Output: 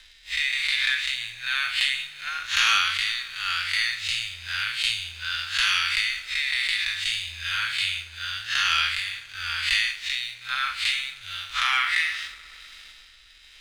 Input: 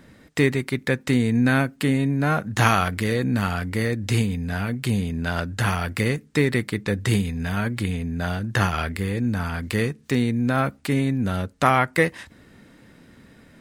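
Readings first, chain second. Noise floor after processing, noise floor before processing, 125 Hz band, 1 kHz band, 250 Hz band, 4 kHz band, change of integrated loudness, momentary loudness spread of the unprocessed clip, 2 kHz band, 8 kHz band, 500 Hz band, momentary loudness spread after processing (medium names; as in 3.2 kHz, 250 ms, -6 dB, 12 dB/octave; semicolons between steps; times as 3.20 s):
-51 dBFS, -52 dBFS, -27.5 dB, -5.5 dB, under -40 dB, +12.0 dB, -1.0 dB, 7 LU, +3.5 dB, +2.0 dB, under -30 dB, 10 LU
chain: spectral blur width 134 ms; in parallel at +0.5 dB: peak limiter -15 dBFS, peak gain reduction 10 dB; on the sum: compression 2.5:1, threshold -23 dBFS, peak gain reduction 8 dB; inverse Chebyshev band-stop 180–400 Hz, stop band 80 dB; flange 0.32 Hz, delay 3.8 ms, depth 5.4 ms, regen +37%; dynamic bell 1.4 kHz, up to +6 dB, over -49 dBFS, Q 1.3; rotary cabinet horn 1 Hz; low-pass 5 kHz 12 dB/octave; resonant high shelf 2.3 kHz +11.5 dB, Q 1.5; on a send: multi-head delay 62 ms, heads second and third, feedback 72%, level -22.5 dB; on the sum: waveshaping leveller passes 1; trim +4.5 dB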